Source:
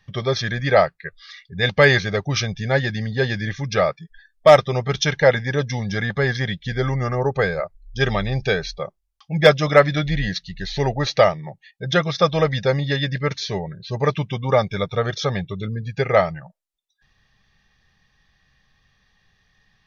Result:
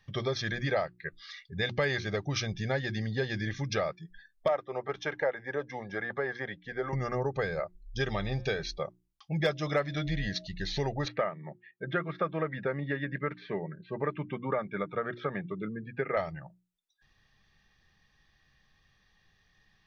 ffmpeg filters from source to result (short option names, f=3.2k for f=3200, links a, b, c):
-filter_complex "[0:a]asettb=1/sr,asplit=3[a][b][c];[a]atrim=end=4.484[d];[b]atrim=start=4.48:end=6.93,asetpts=PTS-STARTPTS,afade=t=in:d=0.004:c=qsin,afade=t=out:st=2.446:d=0.004:c=qsin,acrossover=split=340 2000:gain=0.141 1 0.1[e][f][g];[e][f][g]amix=inputs=3:normalize=0[h];[c]atrim=start=6.926[i];[d][h]acrossfade=d=0.004:c1=hsin:c2=qsin[j];[j][i]acrossfade=d=0.004:c1=qsin:c2=hsin,asettb=1/sr,asplit=3[k][l][m];[k]atrim=end=8.114[n];[l]atrim=start=8.11:end=8.63,asetpts=PTS-STARTPTS,afade=t=in:d=0.004:c=qsin,afade=t=out:st=0.516:d=0.004:c=qsin,bandreject=f=177.3:t=h:w=4,bandreject=f=354.6:t=h:w=4,bandreject=f=531.9:t=h:w=4,bandreject=f=709.2:t=h:w=4,bandreject=f=886.5:t=h:w=4,bandreject=f=1.0638k:t=h:w=4,bandreject=f=1.2411k:t=h:w=4,bandreject=f=1.4184k:t=h:w=4,bandreject=f=1.5957k:t=h:w=4,bandreject=f=1.773k:t=h:w=4,bandreject=f=1.9503k:t=h:w=4,bandreject=f=2.1276k:t=h:w=4,bandreject=f=2.3049k:t=h:w=4,bandreject=f=2.4822k:t=h:w=4,bandreject=f=2.6595k:t=h:w=4,bandreject=f=2.8368k:t=h:w=4,bandreject=f=3.0141k:t=h:w=4,bandreject=f=3.1914k:t=h:w=4,bandreject=f=3.3687k:t=h:w=4,bandreject=f=3.546k:t=h:w=4,bandreject=f=3.7233k:t=h:w=4,bandreject=f=3.9006k:t=h:w=4,bandreject=f=4.0779k:t=h:w=4,bandreject=f=4.2552k:t=h:w=4[o];[m]atrim=start=8.626[p];[n][o]acrossfade=d=0.004:c1=hsin:c2=qsin[q];[q][p]acrossfade=d=0.004:c1=qsin:c2=hsin,asettb=1/sr,asplit=3[r][s][t];[r]atrim=end=9.444[u];[s]atrim=start=9.44:end=10.47,asetpts=PTS-STARTPTS,afade=t=in:d=0.004:c=qsin,afade=t=out:st=1.026:d=0.004:c=qsin,aeval=exprs='val(0)+0.00631*sin(2*PI*630*n/s)':c=same[v];[t]atrim=start=10.466[w];[u][v]acrossfade=d=0.004:c1=hsin:c2=qsin[x];[x][w]acrossfade=d=0.004:c1=qsin:c2=hsin,asettb=1/sr,asplit=3[y][z][aa];[y]atrim=end=11.084[ab];[z]atrim=start=11.08:end=16.17,asetpts=PTS-STARTPTS,afade=t=in:d=0.004:c=qsin,afade=t=out:st=5.086:d=0.004:c=qsin,highpass=f=160:w=0.5412,highpass=f=160:w=1.3066,equalizer=f=510:t=q:w=4:g=-3,equalizer=f=780:t=q:w=4:g=-7,equalizer=f=1.4k:t=q:w=4:g=4,lowpass=f=2.2k:w=0.5412,lowpass=f=2.2k:w=1.3066[ac];[aa]atrim=start=16.166[ad];[ab][ac]acrossfade=d=0.004:c1=hsin:c2=qsin[ae];[ae][ad]acrossfade=d=0.004:c1=qsin:c2=hsin,equalizer=f=330:t=o:w=0.3:g=6,bandreject=f=60:t=h:w=6,bandreject=f=120:t=h:w=6,bandreject=f=180:t=h:w=6,bandreject=f=240:t=h:w=6,bandreject=f=300:t=h:w=6,bandreject=f=360:t=h:w=6,acompressor=threshold=-24dB:ratio=3,volume=-5dB"